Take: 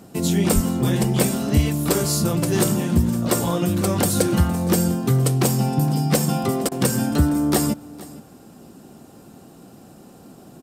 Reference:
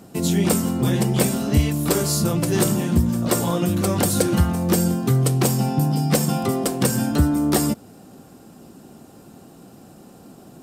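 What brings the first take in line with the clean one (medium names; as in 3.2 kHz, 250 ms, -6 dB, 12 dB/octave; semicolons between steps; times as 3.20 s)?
0.54–0.66 s: high-pass 140 Hz 24 dB/octave; interpolate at 6.69 s, 25 ms; inverse comb 464 ms -20 dB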